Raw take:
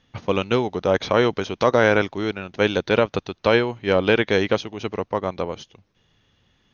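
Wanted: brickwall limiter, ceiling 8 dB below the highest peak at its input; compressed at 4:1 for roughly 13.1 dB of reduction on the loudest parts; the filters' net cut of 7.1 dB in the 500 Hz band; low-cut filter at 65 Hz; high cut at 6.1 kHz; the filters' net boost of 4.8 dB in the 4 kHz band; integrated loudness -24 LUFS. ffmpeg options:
-af "highpass=65,lowpass=6100,equalizer=f=500:t=o:g=-8.5,equalizer=f=4000:t=o:g=7,acompressor=threshold=0.0282:ratio=4,volume=4.47,alimiter=limit=0.376:level=0:latency=1"

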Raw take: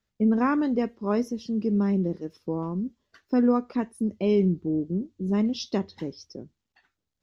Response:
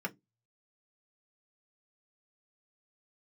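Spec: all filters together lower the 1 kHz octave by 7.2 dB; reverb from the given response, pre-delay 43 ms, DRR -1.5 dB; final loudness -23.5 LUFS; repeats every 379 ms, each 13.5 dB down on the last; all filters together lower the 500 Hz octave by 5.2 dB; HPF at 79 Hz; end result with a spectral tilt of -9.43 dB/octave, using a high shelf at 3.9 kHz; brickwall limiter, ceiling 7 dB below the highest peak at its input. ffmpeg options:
-filter_complex "[0:a]highpass=79,equalizer=f=500:t=o:g=-5,equalizer=f=1000:t=o:g=-8,highshelf=f=3900:g=5,alimiter=limit=0.0794:level=0:latency=1,aecho=1:1:379|758:0.211|0.0444,asplit=2[s0][s1];[1:a]atrim=start_sample=2205,adelay=43[s2];[s1][s2]afir=irnorm=-1:irlink=0,volume=0.794[s3];[s0][s3]amix=inputs=2:normalize=0,volume=0.944"

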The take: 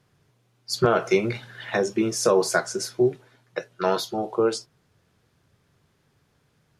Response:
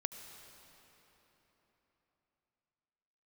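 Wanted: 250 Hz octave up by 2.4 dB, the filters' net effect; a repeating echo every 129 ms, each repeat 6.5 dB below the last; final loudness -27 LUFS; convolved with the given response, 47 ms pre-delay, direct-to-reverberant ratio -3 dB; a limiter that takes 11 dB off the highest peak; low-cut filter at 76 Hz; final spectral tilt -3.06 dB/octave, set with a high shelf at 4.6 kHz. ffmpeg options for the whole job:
-filter_complex "[0:a]highpass=76,equalizer=f=250:t=o:g=4,highshelf=f=4600:g=7,alimiter=limit=0.141:level=0:latency=1,aecho=1:1:129|258|387|516|645|774:0.473|0.222|0.105|0.0491|0.0231|0.0109,asplit=2[s0][s1];[1:a]atrim=start_sample=2205,adelay=47[s2];[s1][s2]afir=irnorm=-1:irlink=0,volume=1.5[s3];[s0][s3]amix=inputs=2:normalize=0,volume=0.596"

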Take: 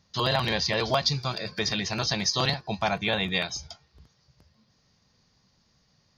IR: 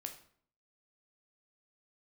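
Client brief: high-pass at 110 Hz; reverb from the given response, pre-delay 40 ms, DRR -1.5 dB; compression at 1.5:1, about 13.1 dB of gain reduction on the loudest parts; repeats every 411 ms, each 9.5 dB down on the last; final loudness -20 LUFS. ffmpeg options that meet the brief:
-filter_complex "[0:a]highpass=110,acompressor=threshold=0.00126:ratio=1.5,aecho=1:1:411|822|1233|1644:0.335|0.111|0.0365|0.012,asplit=2[s0][s1];[1:a]atrim=start_sample=2205,adelay=40[s2];[s1][s2]afir=irnorm=-1:irlink=0,volume=1.68[s3];[s0][s3]amix=inputs=2:normalize=0,volume=5.62"

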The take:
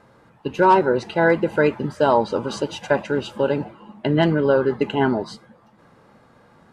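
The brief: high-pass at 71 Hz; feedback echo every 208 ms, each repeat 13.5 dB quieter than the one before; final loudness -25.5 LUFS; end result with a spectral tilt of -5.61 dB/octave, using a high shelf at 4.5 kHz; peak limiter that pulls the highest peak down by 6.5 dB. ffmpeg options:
-af "highpass=71,highshelf=f=4500:g=-8,alimiter=limit=0.266:level=0:latency=1,aecho=1:1:208|416:0.211|0.0444,volume=0.794"

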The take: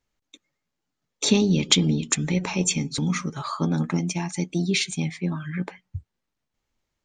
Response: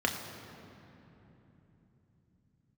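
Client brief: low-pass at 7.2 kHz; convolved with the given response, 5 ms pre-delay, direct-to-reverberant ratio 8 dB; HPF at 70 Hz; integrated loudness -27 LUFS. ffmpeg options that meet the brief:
-filter_complex "[0:a]highpass=70,lowpass=7200,asplit=2[s0][s1];[1:a]atrim=start_sample=2205,adelay=5[s2];[s1][s2]afir=irnorm=-1:irlink=0,volume=0.133[s3];[s0][s3]amix=inputs=2:normalize=0,volume=0.708"

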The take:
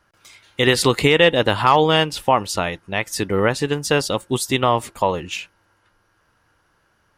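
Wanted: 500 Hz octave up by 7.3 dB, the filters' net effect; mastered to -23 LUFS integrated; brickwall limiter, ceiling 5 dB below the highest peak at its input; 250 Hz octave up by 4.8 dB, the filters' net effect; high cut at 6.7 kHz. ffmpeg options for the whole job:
-af "lowpass=6700,equalizer=f=250:t=o:g=3.5,equalizer=f=500:t=o:g=7.5,volume=0.447,alimiter=limit=0.316:level=0:latency=1"

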